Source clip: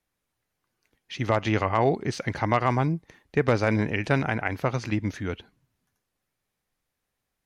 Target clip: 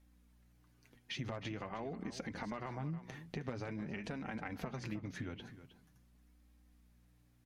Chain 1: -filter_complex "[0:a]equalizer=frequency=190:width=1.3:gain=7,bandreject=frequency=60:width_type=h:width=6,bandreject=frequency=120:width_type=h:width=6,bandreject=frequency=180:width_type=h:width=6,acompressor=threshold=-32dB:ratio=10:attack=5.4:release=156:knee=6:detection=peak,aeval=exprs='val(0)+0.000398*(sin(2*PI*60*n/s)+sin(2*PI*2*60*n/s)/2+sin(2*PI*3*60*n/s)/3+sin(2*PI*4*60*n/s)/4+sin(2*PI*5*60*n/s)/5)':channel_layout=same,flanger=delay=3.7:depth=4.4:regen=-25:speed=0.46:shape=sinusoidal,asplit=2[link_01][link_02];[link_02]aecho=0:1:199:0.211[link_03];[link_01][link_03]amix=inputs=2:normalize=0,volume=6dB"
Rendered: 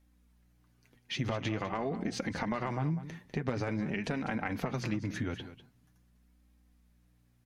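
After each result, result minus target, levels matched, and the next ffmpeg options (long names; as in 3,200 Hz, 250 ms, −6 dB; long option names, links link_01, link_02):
downward compressor: peak gain reduction −8.5 dB; echo 115 ms early
-filter_complex "[0:a]equalizer=frequency=190:width=1.3:gain=7,bandreject=frequency=60:width_type=h:width=6,bandreject=frequency=120:width_type=h:width=6,bandreject=frequency=180:width_type=h:width=6,acompressor=threshold=-41.5dB:ratio=10:attack=5.4:release=156:knee=6:detection=peak,aeval=exprs='val(0)+0.000398*(sin(2*PI*60*n/s)+sin(2*PI*2*60*n/s)/2+sin(2*PI*3*60*n/s)/3+sin(2*PI*4*60*n/s)/4+sin(2*PI*5*60*n/s)/5)':channel_layout=same,flanger=delay=3.7:depth=4.4:regen=-25:speed=0.46:shape=sinusoidal,asplit=2[link_01][link_02];[link_02]aecho=0:1:199:0.211[link_03];[link_01][link_03]amix=inputs=2:normalize=0,volume=6dB"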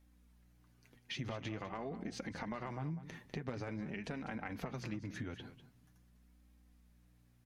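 echo 115 ms early
-filter_complex "[0:a]equalizer=frequency=190:width=1.3:gain=7,bandreject=frequency=60:width_type=h:width=6,bandreject=frequency=120:width_type=h:width=6,bandreject=frequency=180:width_type=h:width=6,acompressor=threshold=-41.5dB:ratio=10:attack=5.4:release=156:knee=6:detection=peak,aeval=exprs='val(0)+0.000398*(sin(2*PI*60*n/s)+sin(2*PI*2*60*n/s)/2+sin(2*PI*3*60*n/s)/3+sin(2*PI*4*60*n/s)/4+sin(2*PI*5*60*n/s)/5)':channel_layout=same,flanger=delay=3.7:depth=4.4:regen=-25:speed=0.46:shape=sinusoidal,asplit=2[link_01][link_02];[link_02]aecho=0:1:314:0.211[link_03];[link_01][link_03]amix=inputs=2:normalize=0,volume=6dB"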